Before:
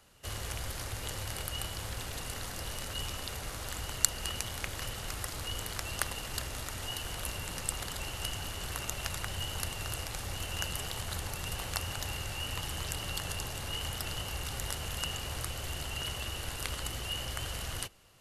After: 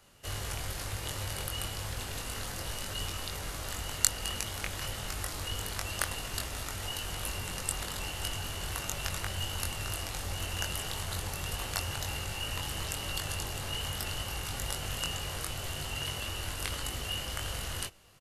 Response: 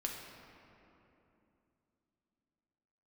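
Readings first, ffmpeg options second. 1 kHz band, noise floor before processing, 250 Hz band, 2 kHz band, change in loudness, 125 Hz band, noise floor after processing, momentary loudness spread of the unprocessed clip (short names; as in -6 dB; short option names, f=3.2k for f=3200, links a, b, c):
+1.5 dB, -41 dBFS, +1.5 dB, +1.5 dB, +1.5 dB, +1.5 dB, -40 dBFS, 3 LU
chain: -filter_complex "[0:a]asplit=2[a][b];[b]adelay=21,volume=-4dB[c];[a][c]amix=inputs=2:normalize=0"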